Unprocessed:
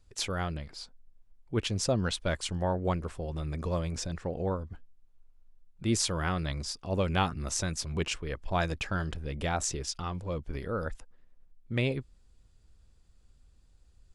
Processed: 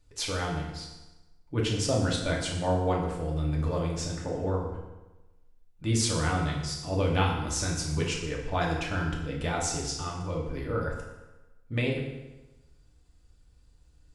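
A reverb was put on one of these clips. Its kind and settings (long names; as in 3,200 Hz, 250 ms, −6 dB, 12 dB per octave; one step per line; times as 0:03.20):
feedback delay network reverb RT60 1.1 s, low-frequency decay 1×, high-frequency decay 0.8×, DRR −2.5 dB
level −2 dB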